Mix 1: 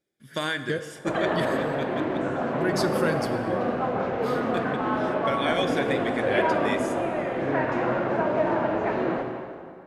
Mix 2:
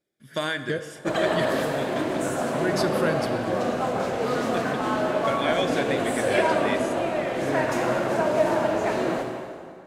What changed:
background: remove low-pass 2.2 kHz 12 dB/octave; master: add peaking EQ 630 Hz +4 dB 0.2 oct

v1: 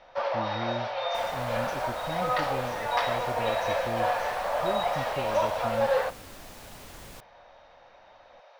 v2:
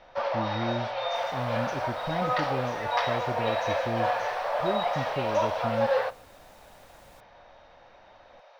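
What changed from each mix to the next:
speech +4.0 dB; second sound -11.0 dB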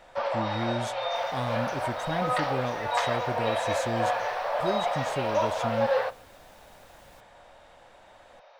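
speech: remove distance through air 440 m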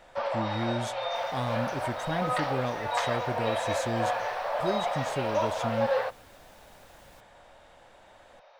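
first sound: send -9.5 dB

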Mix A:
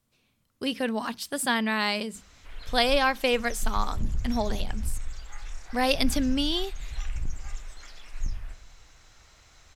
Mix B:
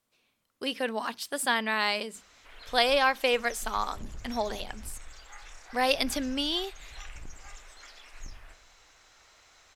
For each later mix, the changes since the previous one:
master: add tone controls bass -14 dB, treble -2 dB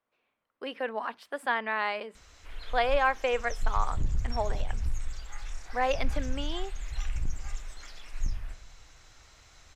speech: add three-band isolator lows -24 dB, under 390 Hz, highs -23 dB, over 2.4 kHz; master: add tone controls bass +14 dB, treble +2 dB

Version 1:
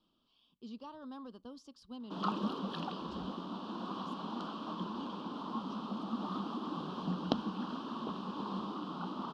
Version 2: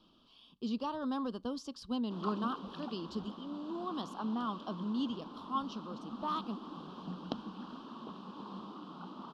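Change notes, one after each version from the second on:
speech +11.0 dB; background -6.5 dB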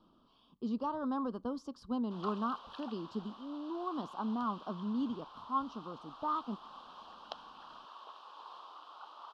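speech: add resonant high shelf 1.7 kHz -8.5 dB, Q 1.5; background: add high-pass 630 Hz 24 dB/octave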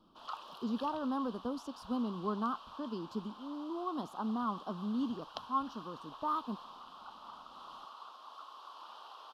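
background: entry -1.95 s; master: remove distance through air 62 m

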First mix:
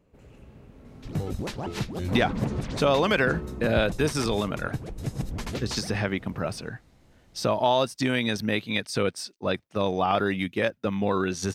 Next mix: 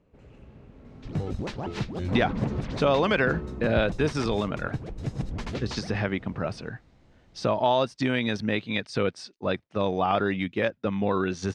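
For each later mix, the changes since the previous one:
speech: add treble shelf 10 kHz -7.5 dB; master: add distance through air 91 m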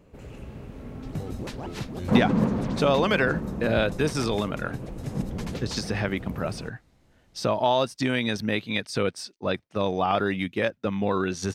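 first sound +9.0 dB; second sound -3.5 dB; master: remove distance through air 91 m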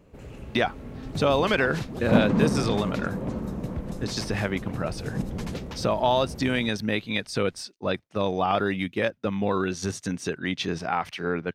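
speech: entry -1.60 s

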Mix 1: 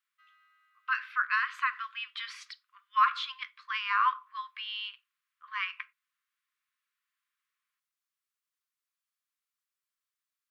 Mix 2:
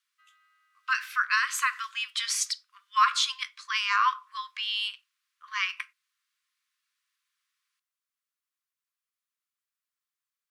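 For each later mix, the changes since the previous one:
speech: remove distance through air 390 m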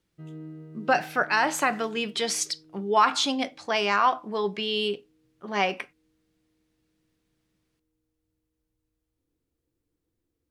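master: remove brick-wall FIR high-pass 1 kHz

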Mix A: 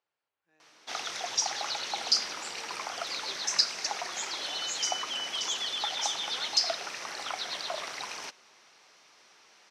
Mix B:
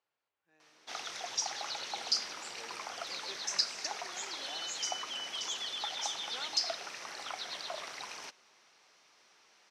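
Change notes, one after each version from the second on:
background -5.5 dB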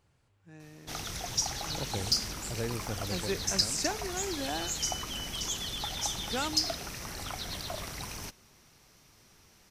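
speech +11.5 dB; master: remove band-pass 570–5100 Hz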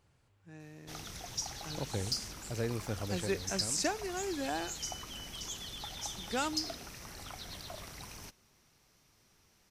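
background -7.5 dB

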